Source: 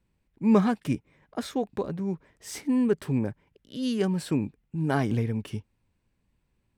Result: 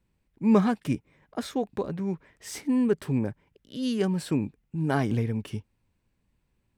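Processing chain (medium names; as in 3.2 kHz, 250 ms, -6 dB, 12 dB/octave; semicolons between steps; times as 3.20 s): 1.92–2.49 s: peaking EQ 2.1 kHz +5 dB 1.7 oct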